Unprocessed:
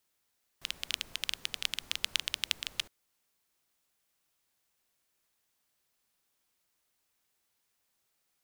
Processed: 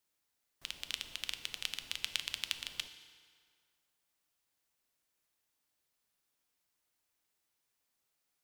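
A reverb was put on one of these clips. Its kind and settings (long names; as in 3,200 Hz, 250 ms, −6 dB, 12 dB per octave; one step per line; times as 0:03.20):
feedback delay network reverb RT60 2.1 s, low-frequency decay 0.8×, high-frequency decay 0.75×, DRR 8.5 dB
level −5 dB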